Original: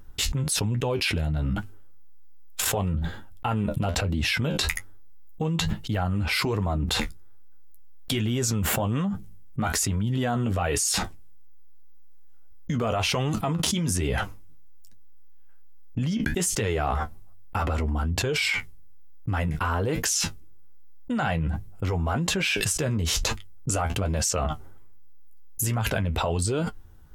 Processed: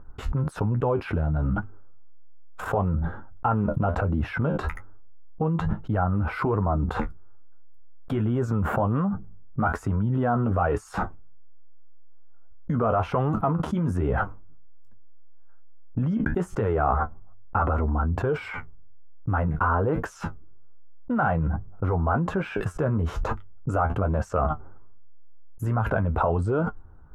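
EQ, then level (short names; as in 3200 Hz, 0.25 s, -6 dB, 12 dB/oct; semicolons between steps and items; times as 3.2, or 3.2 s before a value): EQ curve 270 Hz 0 dB, 1400 Hz +4 dB, 1900 Hz -11 dB, 4400 Hz -27 dB; +1.5 dB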